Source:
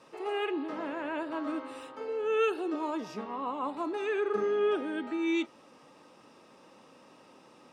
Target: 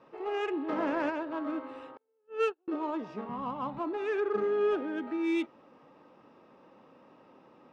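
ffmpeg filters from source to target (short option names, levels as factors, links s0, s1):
-filter_complex "[0:a]asplit=3[s0][s1][s2];[s0]afade=t=out:st=0.67:d=0.02[s3];[s1]acontrast=50,afade=t=in:st=0.67:d=0.02,afade=t=out:st=1.09:d=0.02[s4];[s2]afade=t=in:st=1.09:d=0.02[s5];[s3][s4][s5]amix=inputs=3:normalize=0,asettb=1/sr,asplit=3[s6][s7][s8];[s6]atrim=end=1.974[s9];[s7]atrim=start=1.97:end=2.68,asetpts=PTS-STARTPTS,afade=t=in:d=0.004:c=qsin,afade=t=out:st=0.706:d=0.004:c=qsin,agate=range=0.00794:threshold=0.0501:ratio=16:detection=peak[s10];[s8]atrim=start=2.676[s11];[s9][s10]acrossfade=d=0.004:c1=hsin:c2=qsin[s12];[s12][s11]acrossfade=d=0.004:c1=qsin:c2=hsin,asettb=1/sr,asplit=3[s13][s14][s15];[s13]atrim=end=3.294[s16];[s14]atrim=start=3.29:end=3.79,asetpts=PTS-STARTPTS,afade=t=in:d=0.004:c=qsin,afade=t=out:st=0.496:d=0.004:c=qsin,lowshelf=f=230:t=q:w=3:g=12.5[s17];[s15]atrim=start=3.786[s18];[s16][s17]acrossfade=d=0.004:c1=hsin:c2=qsin[s19];[s19][s18]acrossfade=d=0.004:c1=qsin:c2=hsin,adynamicsmooth=sensitivity=3:basefreq=2300"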